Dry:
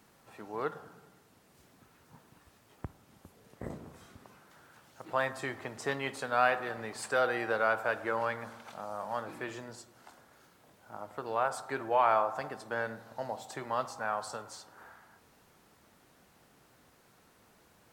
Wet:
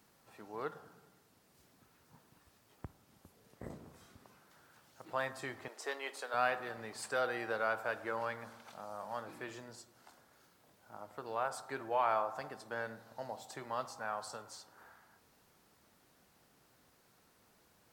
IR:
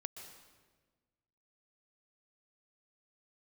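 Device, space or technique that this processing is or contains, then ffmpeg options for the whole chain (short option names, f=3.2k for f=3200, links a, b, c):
presence and air boost: -filter_complex "[0:a]equalizer=f=4.8k:t=o:w=0.77:g=3,highshelf=f=11k:g=6,asettb=1/sr,asplit=3[a][b][c];[a]atrim=end=5.684[d];[b]atrim=start=5.68:end=6.34,asetpts=PTS-STARTPTS,afade=t=in:d=0.004:c=qsin,afade=t=out:st=0.656:d=0.004:c=qsin,highpass=f=360:w=0.5412,highpass=f=360:w=1.3066[e];[c]atrim=start=6.336[f];[d][e]acrossfade=d=0.004:c1=hsin:c2=qsin[g];[g][f]acrossfade=d=0.004:c1=qsin:c2=hsin,volume=-6dB"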